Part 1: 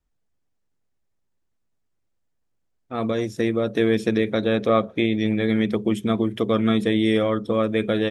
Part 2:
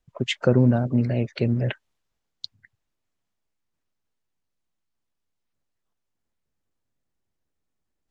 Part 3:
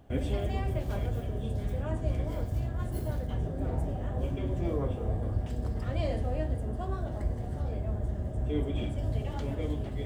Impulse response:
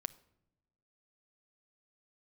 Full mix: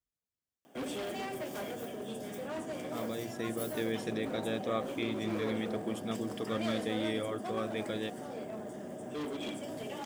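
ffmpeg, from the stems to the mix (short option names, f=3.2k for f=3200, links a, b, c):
-filter_complex "[0:a]volume=-15.5dB[a];[2:a]highpass=f=210:w=0.5412,highpass=f=210:w=1.3066,bandreject=f=4.1k:w=6,asoftclip=type=hard:threshold=-35dB,adelay=650,volume=0dB[b];[a][b]amix=inputs=2:normalize=0,highpass=55,highshelf=f=3.2k:g=9"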